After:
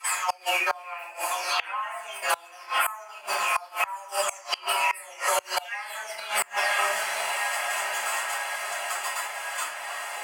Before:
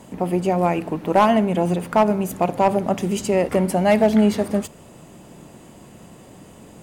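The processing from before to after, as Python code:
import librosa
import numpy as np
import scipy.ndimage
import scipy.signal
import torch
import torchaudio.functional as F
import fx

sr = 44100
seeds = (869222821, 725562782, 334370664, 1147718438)

y = fx.spec_delay(x, sr, highs='early', ms=397)
y = fx.level_steps(y, sr, step_db=22)
y = fx.stretch_vocoder(y, sr, factor=1.5)
y = scipy.signal.sosfilt(scipy.signal.butter(4, 1100.0, 'highpass', fs=sr, output='sos'), y)
y = fx.notch(y, sr, hz=3800.0, q=11.0)
y = fx.echo_diffused(y, sr, ms=974, feedback_pct=51, wet_db=-15)
y = fx.room_shoebox(y, sr, seeds[0], volume_m3=56.0, walls='mixed', distance_m=3.5)
y = fx.gate_flip(y, sr, shuts_db=-19.0, range_db=-28)
y = fx.band_squash(y, sr, depth_pct=70)
y = F.gain(torch.from_numpy(y), 9.0).numpy()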